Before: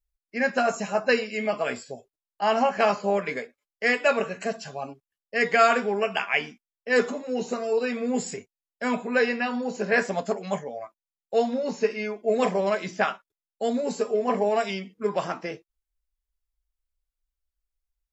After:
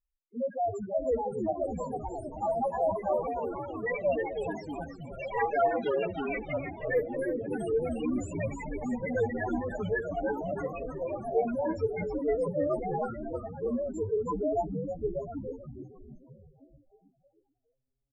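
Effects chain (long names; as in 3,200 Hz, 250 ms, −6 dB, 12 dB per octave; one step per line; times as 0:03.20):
spectral peaks only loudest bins 1
delay with pitch and tempo change per echo 692 ms, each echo +3 semitones, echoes 3, each echo −6 dB
echo with shifted repeats 315 ms, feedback 57%, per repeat −140 Hz, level −7 dB
level +1 dB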